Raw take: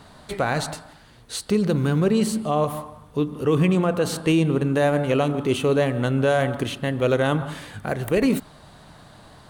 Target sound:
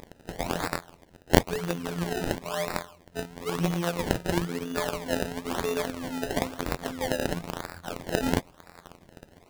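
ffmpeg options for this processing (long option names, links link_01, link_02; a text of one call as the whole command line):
ffmpeg -i in.wav -af "afftfilt=real='hypot(re,im)*cos(PI*b)':imag='0':win_size=2048:overlap=0.75,crystalizer=i=8.5:c=0,acrusher=samples=27:mix=1:aa=0.000001:lfo=1:lforange=27:lforate=1,volume=-8dB" out.wav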